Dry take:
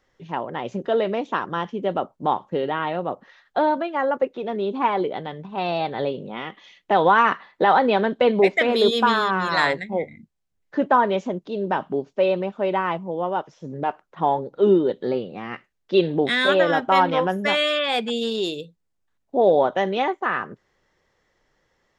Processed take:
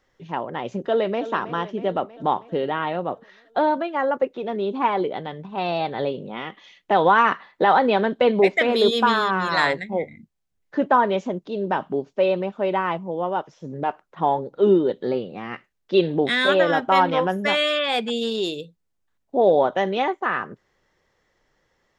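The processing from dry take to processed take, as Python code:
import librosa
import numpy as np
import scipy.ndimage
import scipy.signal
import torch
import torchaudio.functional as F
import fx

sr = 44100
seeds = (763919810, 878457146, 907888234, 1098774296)

y = fx.echo_throw(x, sr, start_s=0.85, length_s=0.41, ms=320, feedback_pct=65, wet_db=-13.0)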